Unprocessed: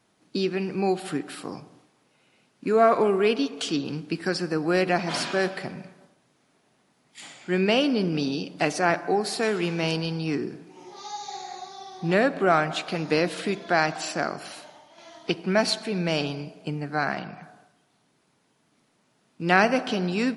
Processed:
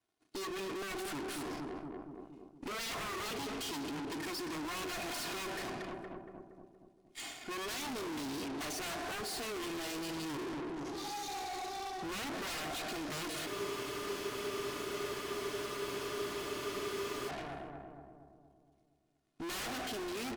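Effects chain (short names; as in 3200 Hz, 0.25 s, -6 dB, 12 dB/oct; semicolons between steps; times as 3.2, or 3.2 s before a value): comb 2.8 ms, depth 74%; sine folder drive 20 dB, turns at -3 dBFS; power-law curve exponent 2; on a send: darkening echo 0.234 s, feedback 56%, low-pass 1200 Hz, level -14 dB; on the sum: tube stage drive 32 dB, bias 0.4; spectral freeze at 13.48, 3.81 s; gain -7 dB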